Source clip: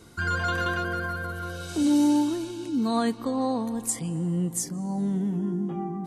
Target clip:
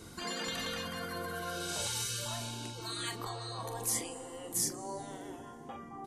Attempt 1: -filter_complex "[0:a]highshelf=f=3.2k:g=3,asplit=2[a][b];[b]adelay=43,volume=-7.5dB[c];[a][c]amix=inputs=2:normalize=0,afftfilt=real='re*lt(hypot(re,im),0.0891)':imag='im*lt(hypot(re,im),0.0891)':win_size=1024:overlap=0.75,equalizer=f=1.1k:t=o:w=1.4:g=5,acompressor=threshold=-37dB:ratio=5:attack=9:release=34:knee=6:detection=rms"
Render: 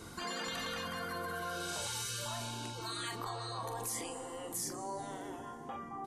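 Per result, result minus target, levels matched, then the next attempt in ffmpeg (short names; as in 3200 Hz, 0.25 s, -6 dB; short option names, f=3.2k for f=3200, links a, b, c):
compressor: peak gain reduction +7.5 dB; 1000 Hz band +4.5 dB
-filter_complex "[0:a]highshelf=f=3.2k:g=3,asplit=2[a][b];[b]adelay=43,volume=-7.5dB[c];[a][c]amix=inputs=2:normalize=0,afftfilt=real='re*lt(hypot(re,im),0.0891)':imag='im*lt(hypot(re,im),0.0891)':win_size=1024:overlap=0.75,equalizer=f=1.1k:t=o:w=1.4:g=5"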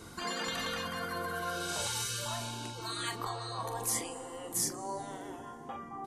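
1000 Hz band +3.5 dB
-filter_complex "[0:a]highshelf=f=3.2k:g=3,asplit=2[a][b];[b]adelay=43,volume=-7.5dB[c];[a][c]amix=inputs=2:normalize=0,afftfilt=real='re*lt(hypot(re,im),0.0891)':imag='im*lt(hypot(re,im),0.0891)':win_size=1024:overlap=0.75"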